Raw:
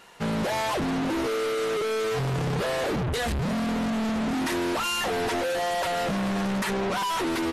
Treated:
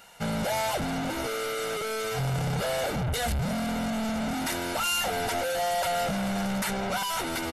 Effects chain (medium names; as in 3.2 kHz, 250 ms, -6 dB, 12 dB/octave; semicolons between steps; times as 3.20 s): treble shelf 8.8 kHz +11.5 dB; comb 1.4 ms, depth 53%; trim -3 dB